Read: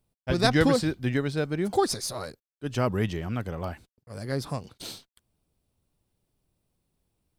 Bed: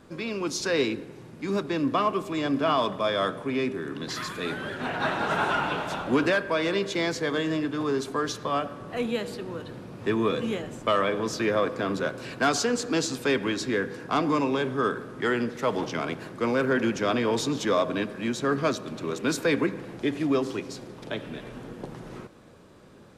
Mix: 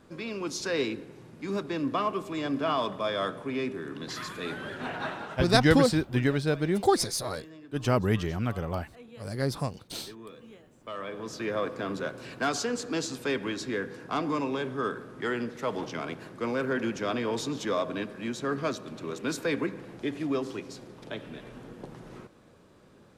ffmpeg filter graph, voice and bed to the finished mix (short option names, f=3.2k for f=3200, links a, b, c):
-filter_complex "[0:a]adelay=5100,volume=1dB[a];[1:a]volume=12dB,afade=t=out:st=4.87:d=0.55:silence=0.141254,afade=t=in:st=10.76:d=0.9:silence=0.158489[b];[a][b]amix=inputs=2:normalize=0"